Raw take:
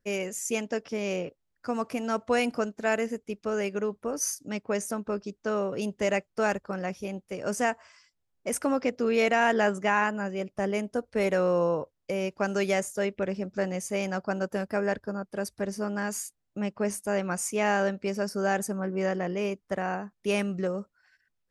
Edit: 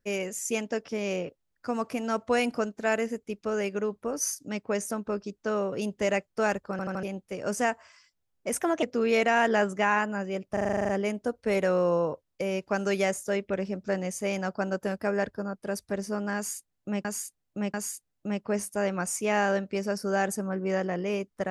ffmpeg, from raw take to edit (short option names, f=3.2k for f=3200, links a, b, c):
-filter_complex "[0:a]asplit=18[a][b][c][d][e][f][g][h][i][j][k][l][m][n][o][p][q][r];[a]atrim=end=6.792[s];[b]atrim=start=6.708:end=6.792[t];[c]atrim=start=6.708:end=6.792[u];[d]atrim=start=6.708:end=6.792[v];[e]atrim=start=7.028:end=8.604[w];[f]atrim=start=8.6:end=8.88,asetpts=PTS-STARTPTS,asetrate=54243,aresample=44100,atrim=end_sample=10039,asetpts=PTS-STARTPTS[x];[g]atrim=start=8.876:end=10.622[y];[h]atrim=start=10.578:end=10.622[z];[i]atrim=start=10.578:end=10.622[aa];[j]atrim=start=10.578:end=10.622[ab];[k]atrim=start=10.578:end=10.622[ac];[l]atrim=start=10.578:end=10.622[ad];[m]atrim=start=10.578:end=10.622[ae];[n]atrim=start=10.578:end=10.622[af];[o]atrim=start=10.578:end=10.622[ag];[p]atrim=start=10.578:end=16.742[ah];[q]atrim=start=16.048:end=16.742[ai];[r]atrim=start=16.048[aj];[s][t]acrossfade=d=0.004:c1=hsin:c2=hsin[ak];[ak][u]acrossfade=d=0.004:c1=hsin:c2=hsin[al];[al][v]acrossfade=d=0.004:c1=hsin:c2=hsin[am];[am][w]acrossfade=d=0.004:c1=hsin:c2=hsin[an];[an][x]acrossfade=d=0.004:c1=hsin:c2=hsin[ao];[ao][y]acrossfade=d=0.004:c1=hsin:c2=hsin[ap];[ap][z]acrossfade=d=0.004:c1=hsin:c2=hsin[aq];[aq][aa]acrossfade=d=0.004:c1=hsin:c2=hsin[ar];[ar][ab]acrossfade=d=0.004:c1=hsin:c2=hsin[as];[as][ac]acrossfade=d=0.004:c1=hsin:c2=hsin[at];[at][ad]acrossfade=d=0.004:c1=hsin:c2=hsin[au];[au][ae]acrossfade=d=0.004:c1=hsin:c2=hsin[av];[av][af]acrossfade=d=0.004:c1=hsin:c2=hsin[aw];[aw][ag]acrossfade=d=0.004:c1=hsin:c2=hsin[ax];[ax][ah]acrossfade=d=0.004:c1=hsin:c2=hsin[ay];[ay][ai]acrossfade=d=0.004:c1=hsin:c2=hsin[az];[az][aj]acrossfade=d=0.004:c1=hsin:c2=hsin"